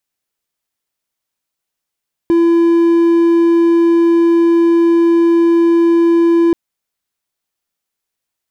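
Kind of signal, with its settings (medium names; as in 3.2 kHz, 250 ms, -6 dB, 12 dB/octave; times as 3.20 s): tone triangle 337 Hz -5.5 dBFS 4.23 s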